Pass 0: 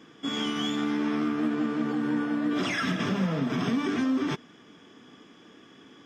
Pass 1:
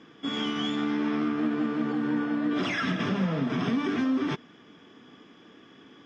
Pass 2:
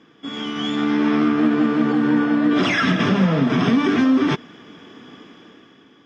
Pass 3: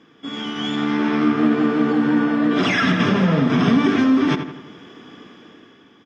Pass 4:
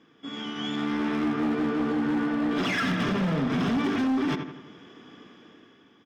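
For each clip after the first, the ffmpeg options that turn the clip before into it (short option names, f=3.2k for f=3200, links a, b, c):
-af "lowpass=4.9k"
-af "dynaudnorm=f=160:g=9:m=10dB"
-filter_complex "[0:a]asplit=2[a][b];[b]adelay=83,lowpass=f=2.8k:p=1,volume=-8dB,asplit=2[c][d];[d]adelay=83,lowpass=f=2.8k:p=1,volume=0.5,asplit=2[e][f];[f]adelay=83,lowpass=f=2.8k:p=1,volume=0.5,asplit=2[g][h];[h]adelay=83,lowpass=f=2.8k:p=1,volume=0.5,asplit=2[i][j];[j]adelay=83,lowpass=f=2.8k:p=1,volume=0.5,asplit=2[k][l];[l]adelay=83,lowpass=f=2.8k:p=1,volume=0.5[m];[a][c][e][g][i][k][m]amix=inputs=7:normalize=0"
-af "asoftclip=type=hard:threshold=-15dB,volume=-7dB"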